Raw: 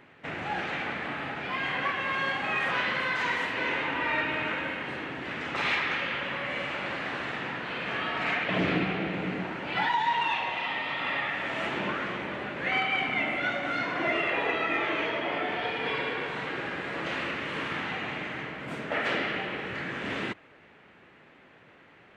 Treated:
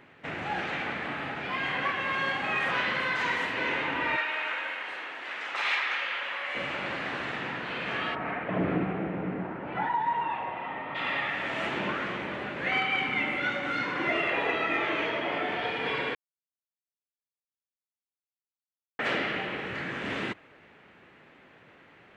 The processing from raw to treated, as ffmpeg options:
ffmpeg -i in.wav -filter_complex "[0:a]asettb=1/sr,asplit=3[link_01][link_02][link_03];[link_01]atrim=end=4.164[link_04];[link_02]atrim=start=4.16:end=6.55,asetpts=PTS-STARTPTS,afade=type=in:duration=0.004:curve=qsin,afade=type=out:start_time=2.386:duration=0.004:curve=qsin,highpass=710[link_05];[link_03]atrim=start=6.546[link_06];[link_04][link_05]acrossfade=duration=0.004:curve1=hsin:curve2=qsin[link_07];[link_07][link_06]acrossfade=duration=0.004:curve1=qsin:curve2=hsin,asplit=3[link_08][link_09][link_10];[link_08]afade=type=out:start_time=8.14:duration=0.02[link_11];[link_09]lowpass=1300,afade=type=in:start_time=8.14:duration=0.02,afade=type=out:start_time=10.94:duration=0.02[link_12];[link_10]afade=type=in:start_time=10.94:duration=0.02[link_13];[link_11][link_12][link_13]amix=inputs=3:normalize=0,asettb=1/sr,asplit=3[link_14][link_15][link_16];[link_14]atrim=end=12.744[link_17];[link_15]atrim=start=12.74:end=14.09,asetpts=PTS-STARTPTS,afade=type=in:duration=0.004:curve=qsin,afade=type=out:start_time=1.346:duration=0.004:curve=qsin,asuperstop=centerf=670:order=4:qfactor=5.3[link_18];[link_16]atrim=start=14.086[link_19];[link_17][link_18]acrossfade=duration=0.004:curve1=hsin:curve2=qsin[link_20];[link_20][link_19]acrossfade=duration=0.004:curve1=qsin:curve2=hsin,asplit=3[link_21][link_22][link_23];[link_21]atrim=end=16.15,asetpts=PTS-STARTPTS,afade=type=out:start_time=16.146:duration=0.004:curve=hsin[link_24];[link_22]atrim=start=16.15:end=18.99,asetpts=PTS-STARTPTS,volume=0[link_25];[link_23]atrim=start=18.99,asetpts=PTS-STARTPTS,afade=type=in:duration=0.004:curve=hsin[link_26];[link_24][link_25][link_26]concat=n=3:v=0:a=1" out.wav

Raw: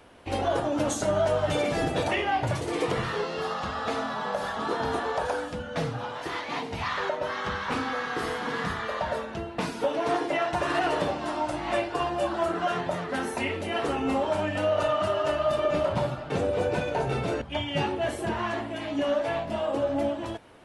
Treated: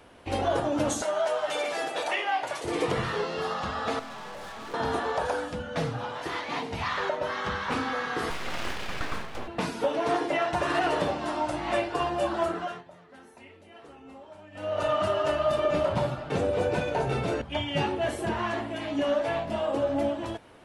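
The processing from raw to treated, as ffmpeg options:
ffmpeg -i in.wav -filter_complex "[0:a]asettb=1/sr,asplit=3[link_01][link_02][link_03];[link_01]atrim=end=1.024[link_04];[link_02]atrim=start=1.02:end=2.64,asetpts=PTS-STARTPTS,afade=type=in:duration=0.004:curve=qsin,afade=type=out:start_time=1.616:duration=0.004:curve=qsin,highpass=600[link_05];[link_03]atrim=start=2.636[link_06];[link_04][link_05]acrossfade=duration=0.004:curve1=hsin:curve2=qsin[link_07];[link_07][link_06]acrossfade=duration=0.004:curve1=qsin:curve2=hsin,asettb=1/sr,asplit=3[link_08][link_09][link_10];[link_08]atrim=end=3.994[link_11];[link_09]atrim=start=3.99:end=4.74,asetpts=PTS-STARTPTS,afade=type=in:duration=0.004:curve=qsin,afade=type=out:start_time=0.746:duration=0.004:curve=qsin,aeval=exprs='(tanh(89.1*val(0)+0.5)-tanh(0.5))/89.1':channel_layout=same[link_12];[link_10]atrim=start=4.736[link_13];[link_11][link_12]acrossfade=duration=0.004:curve1=hsin:curve2=qsin[link_14];[link_14][link_13]acrossfade=duration=0.004:curve1=qsin:curve2=hsin,asettb=1/sr,asplit=3[link_15][link_16][link_17];[link_15]atrim=end=8.304[link_18];[link_16]atrim=start=8.3:end=9.48,asetpts=PTS-STARTPTS,afade=type=in:duration=0.004:curve=qsin,afade=type=out:start_time=1.176:duration=0.004:curve=qsin,aeval=exprs='abs(val(0))':channel_layout=same[link_19];[link_17]atrim=start=9.476[link_20];[link_18][link_19]acrossfade=duration=0.004:curve1=hsin:curve2=qsin[link_21];[link_21][link_20]acrossfade=duration=0.004:curve1=qsin:curve2=hsin,asplit=3[link_22][link_23][link_24];[link_22]atrim=end=12.84,asetpts=PTS-STARTPTS,afade=type=out:start_time=12.42:duration=0.42:silence=0.0891251[link_25];[link_23]atrim=start=12.84:end=14.51,asetpts=PTS-STARTPTS,volume=-21dB[link_26];[link_24]atrim=start=14.51,asetpts=PTS-STARTPTS,afade=type=in:duration=0.42:silence=0.0891251[link_27];[link_25][link_26][link_27]concat=n=3:v=0:a=1" out.wav

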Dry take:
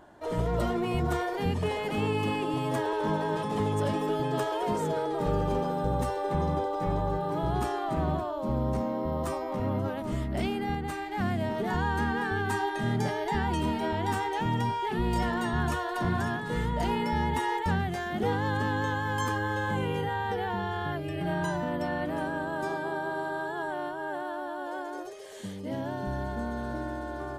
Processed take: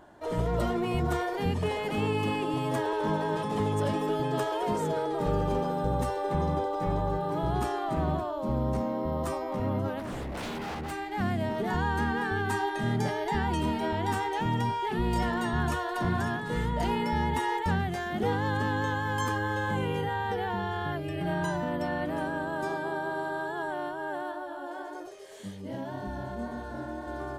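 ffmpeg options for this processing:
ffmpeg -i in.wav -filter_complex "[0:a]asettb=1/sr,asplit=3[link_01][link_02][link_03];[link_01]atrim=end=9.994[link_04];[link_02]atrim=start=9.99:end=10.91,asetpts=PTS-STARTPTS,afade=type=in:duration=0.004:curve=qsin,afade=type=out:start_time=0.916:duration=0.004:curve=qsin,aeval=exprs='0.0299*(abs(mod(val(0)/0.0299+3,4)-2)-1)':channel_layout=same[link_05];[link_03]atrim=start=10.906[link_06];[link_04][link_05]acrossfade=duration=0.004:curve1=hsin:curve2=qsin[link_07];[link_07][link_06]acrossfade=duration=0.004:curve1=qsin:curve2=hsin,asplit=3[link_08][link_09][link_10];[link_08]afade=type=out:start_time=24.31:duration=0.02[link_11];[link_09]flanger=delay=19:depth=6.8:speed=1.8,afade=type=in:start_time=24.31:duration=0.02,afade=type=out:start_time=27.06:duration=0.02[link_12];[link_10]afade=type=in:start_time=27.06:duration=0.02[link_13];[link_11][link_12][link_13]amix=inputs=3:normalize=0" out.wav

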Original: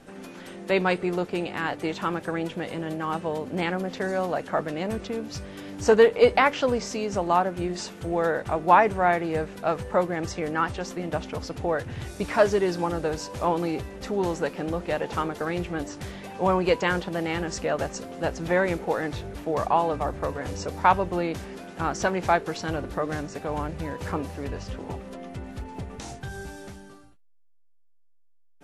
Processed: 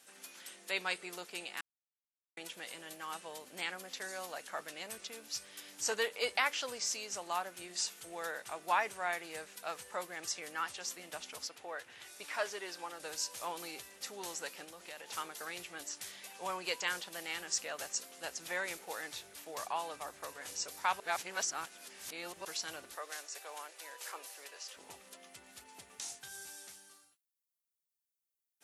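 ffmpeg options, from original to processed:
ffmpeg -i in.wav -filter_complex "[0:a]asettb=1/sr,asplit=3[link_01][link_02][link_03];[link_01]atrim=end=11.474[link_04];[link_02]atrim=start=11.47:end=13,asetpts=PTS-STARTPTS,afade=type=in:duration=0.004:curve=qsin,afade=type=out:start_time=1.526:duration=0.004:curve=qsin,bass=frequency=250:gain=-9,treble=frequency=4000:gain=-9[link_05];[link_03]atrim=start=12.996[link_06];[link_04][link_05]acrossfade=duration=0.004:curve1=hsin:curve2=qsin[link_07];[link_07][link_06]acrossfade=duration=0.004:curve1=qsin:curve2=hsin,asettb=1/sr,asplit=3[link_08][link_09][link_10];[link_08]atrim=end=14.644[link_11];[link_09]atrim=start=14.64:end=15.16,asetpts=PTS-STARTPTS,afade=type=in:duration=0.004:curve=qsin,afade=type=out:start_time=0.516:duration=0.004:curve=qsin,acompressor=threshold=-28dB:ratio=10:attack=3.2:release=140:knee=1:detection=peak[link_12];[link_10]atrim=start=15.156[link_13];[link_11][link_12]acrossfade=duration=0.004:curve1=hsin:curve2=qsin[link_14];[link_14][link_13]acrossfade=duration=0.004:curve1=qsin:curve2=hsin,asettb=1/sr,asplit=3[link_15][link_16][link_17];[link_15]atrim=end=22.954[link_18];[link_16]atrim=start=22.95:end=24.77,asetpts=PTS-STARTPTS,afade=type=in:duration=0.004:curve=qsin,afade=type=out:start_time=1.816:duration=0.004:curve=qsin,highpass=frequency=400:width=0.5412,highpass=frequency=400:width=1.3066[link_19];[link_17]atrim=start=24.766[link_20];[link_18][link_19]acrossfade=duration=0.004:curve1=hsin:curve2=qsin[link_21];[link_21][link_20]acrossfade=duration=0.004:curve1=qsin:curve2=hsin,asplit=5[link_22][link_23][link_24][link_25][link_26];[link_22]atrim=end=1.61,asetpts=PTS-STARTPTS,afade=type=out:start_time=1.606:duration=0.004:curve=hsin[link_27];[link_23]atrim=start=1.61:end=2.37,asetpts=PTS-STARTPTS,volume=0[link_28];[link_24]atrim=start=2.37:end=21.002,asetpts=PTS-STARTPTS,afade=type=in:duration=0.004:curve=hsin[link_29];[link_25]atrim=start=20.998:end=22.452,asetpts=PTS-STARTPTS,areverse[link_30];[link_26]atrim=start=22.448[link_31];[link_27][link_28][link_29]concat=n=3:v=0:a=1[link_32];[link_32][link_30]acrossfade=duration=0.004:curve1=hsin:curve2=hsin[link_33];[link_33][link_31]acrossfade=duration=0.004:curve1=hsin:curve2=hsin,aderivative,volume=3dB" out.wav

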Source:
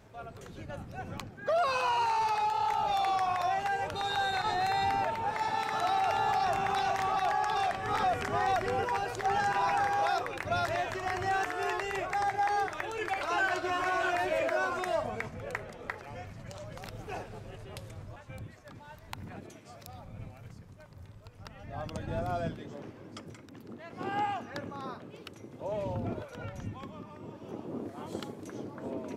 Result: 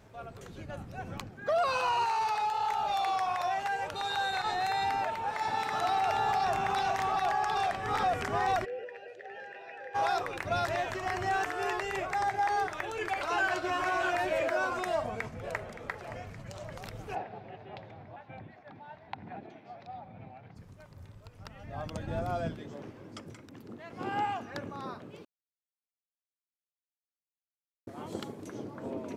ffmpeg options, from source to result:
ffmpeg -i in.wav -filter_complex "[0:a]asettb=1/sr,asplit=3[link_01][link_02][link_03];[link_01]atrim=end=2.044[link_04];[link_02]atrim=start=2.04:end=5.45,asetpts=PTS-STARTPTS,afade=type=in:duration=0.004:curve=qsin,afade=type=out:start_time=3.406:duration=0.004:curve=qsin,lowshelf=frequency=370:gain=-6.5[link_05];[link_03]atrim=start=5.446[link_06];[link_04][link_05]acrossfade=duration=0.004:curve1=hsin:curve2=qsin[link_07];[link_07][link_06]acrossfade=duration=0.004:curve1=qsin:curve2=hsin,asplit=3[link_08][link_09][link_10];[link_08]afade=type=out:start_time=8.64:duration=0.02[link_11];[link_09]asplit=3[link_12][link_13][link_14];[link_12]bandpass=frequency=530:width_type=q:width=8,volume=0dB[link_15];[link_13]bandpass=frequency=1840:width_type=q:width=8,volume=-6dB[link_16];[link_14]bandpass=frequency=2480:width_type=q:width=8,volume=-9dB[link_17];[link_15][link_16][link_17]amix=inputs=3:normalize=0,afade=type=in:start_time=8.64:duration=0.02,afade=type=out:start_time=9.94:duration=0.02[link_18];[link_10]afade=type=in:start_time=9.94:duration=0.02[link_19];[link_11][link_18][link_19]amix=inputs=3:normalize=0,asplit=2[link_20][link_21];[link_21]afade=type=in:start_time=14.86:duration=0.01,afade=type=out:start_time=15.69:duration=0.01,aecho=0:1:570|1140|1710|2280|2850|3420|3990|4560:0.211349|0.137377|0.0892949|0.0580417|0.0377271|0.0245226|0.0159397|0.0103608[link_22];[link_20][link_22]amix=inputs=2:normalize=0,asplit=3[link_23][link_24][link_25];[link_23]afade=type=out:start_time=17.14:duration=0.02[link_26];[link_24]highpass=150,equalizer=frequency=510:width_type=q:width=4:gain=-3,equalizer=frequency=770:width_type=q:width=4:gain=10,equalizer=frequency=1200:width_type=q:width=4:gain=-5,equalizer=frequency=3000:width_type=q:width=4:gain=-4,lowpass=frequency=3600:width=0.5412,lowpass=frequency=3600:width=1.3066,afade=type=in:start_time=17.14:duration=0.02,afade=type=out:start_time=20.55:duration=0.02[link_27];[link_25]afade=type=in:start_time=20.55:duration=0.02[link_28];[link_26][link_27][link_28]amix=inputs=3:normalize=0,asplit=3[link_29][link_30][link_31];[link_29]atrim=end=25.25,asetpts=PTS-STARTPTS,afade=type=out:start_time=25.246:duration=0.004:curve=hsin[link_32];[link_30]atrim=start=25.25:end=27.87,asetpts=PTS-STARTPTS,volume=0[link_33];[link_31]atrim=start=27.87,asetpts=PTS-STARTPTS,afade=type=in:duration=0.004:curve=hsin[link_34];[link_32][link_33][link_34]concat=n=3:v=0:a=1" out.wav

